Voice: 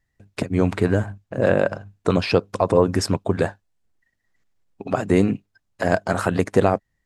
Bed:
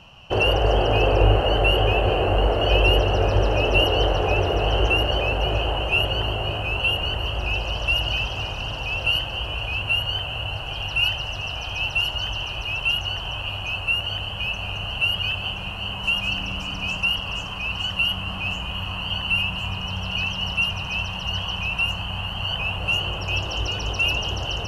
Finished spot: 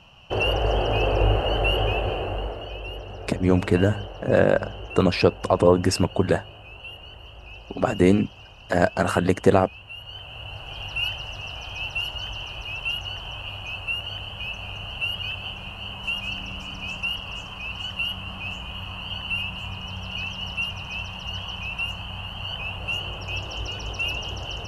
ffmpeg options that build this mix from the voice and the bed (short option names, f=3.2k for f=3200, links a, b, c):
-filter_complex "[0:a]adelay=2900,volume=0dB[a];[1:a]volume=8.5dB,afade=t=out:st=1.82:d=0.91:silence=0.199526,afade=t=in:st=9.93:d=0.89:silence=0.251189[b];[a][b]amix=inputs=2:normalize=0"